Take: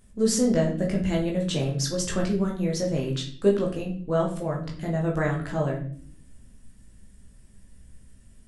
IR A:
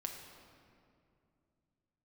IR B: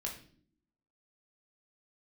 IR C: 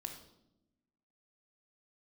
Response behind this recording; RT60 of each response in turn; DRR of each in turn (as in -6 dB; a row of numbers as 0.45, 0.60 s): B; 2.5 s, not exponential, 0.85 s; 2.0, -1.5, 4.0 dB